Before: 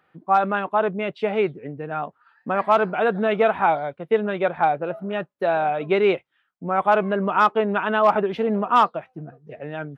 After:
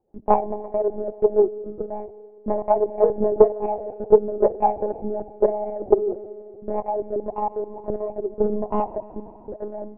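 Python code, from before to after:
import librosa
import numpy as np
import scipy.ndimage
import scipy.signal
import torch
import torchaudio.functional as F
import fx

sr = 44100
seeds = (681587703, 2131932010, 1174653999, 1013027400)

y = scipy.signal.sosfilt(scipy.signal.butter(16, 970.0, 'lowpass', fs=sr, output='sos'), x)
y = fx.peak_eq(y, sr, hz=360.0, db=9.0, octaves=2.2)
y = fx.transient(y, sr, attack_db=9, sustain_db=-5)
y = fx.level_steps(y, sr, step_db=15, at=(5.86, 8.41))
y = fx.rotary_switch(y, sr, hz=5.5, then_hz=0.9, switch_at_s=6.23)
y = fx.rev_schroeder(y, sr, rt60_s=2.9, comb_ms=25, drr_db=14.0)
y = fx.lpc_monotone(y, sr, seeds[0], pitch_hz=210.0, order=16)
y = fx.doppler_dist(y, sr, depth_ms=0.2)
y = F.gain(torch.from_numpy(y), -6.5).numpy()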